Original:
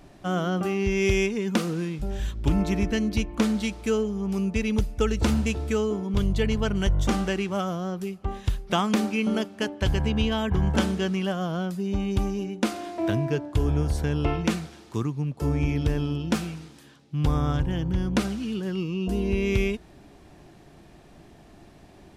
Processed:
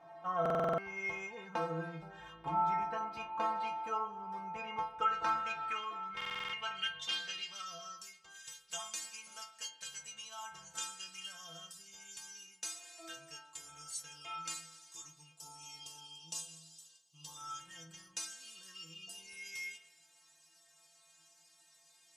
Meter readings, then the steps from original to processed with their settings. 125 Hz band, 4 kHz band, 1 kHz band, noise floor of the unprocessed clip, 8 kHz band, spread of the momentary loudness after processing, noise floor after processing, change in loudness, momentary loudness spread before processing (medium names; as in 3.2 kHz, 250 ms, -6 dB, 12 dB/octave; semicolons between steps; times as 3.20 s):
-27.0 dB, -7.5 dB, -3.0 dB, -51 dBFS, -2.5 dB, 16 LU, -66 dBFS, -13.5 dB, 6 LU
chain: time-frequency box 15.33–17.36 s, 1.2–2.5 kHz -13 dB; band-pass sweep 890 Hz -> 7.5 kHz, 4.68–8.44 s; peaking EQ 320 Hz -9.5 dB 0.21 oct; in parallel at -1 dB: compression, threshold -54 dBFS, peak gain reduction 21 dB; on the sum: peaking EQ 1.3 kHz +2.5 dB; inharmonic resonator 160 Hz, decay 0.55 s, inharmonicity 0.008; spring tank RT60 1 s, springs 53 ms, chirp 50 ms, DRR 12 dB; buffer glitch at 0.41/6.16 s, samples 2048, times 7; trim +15.5 dB